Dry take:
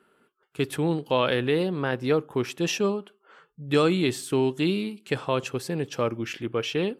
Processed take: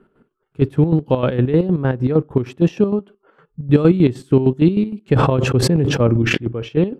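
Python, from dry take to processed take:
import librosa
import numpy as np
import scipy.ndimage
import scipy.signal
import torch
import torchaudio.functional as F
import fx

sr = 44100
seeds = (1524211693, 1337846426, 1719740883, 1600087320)

y = fx.tilt_eq(x, sr, slope=-4.5)
y = fx.chopper(y, sr, hz=6.5, depth_pct=65, duty_pct=45)
y = fx.sustainer(y, sr, db_per_s=24.0, at=(5.14, 6.36), fade=0.02)
y = y * librosa.db_to_amplitude(4.0)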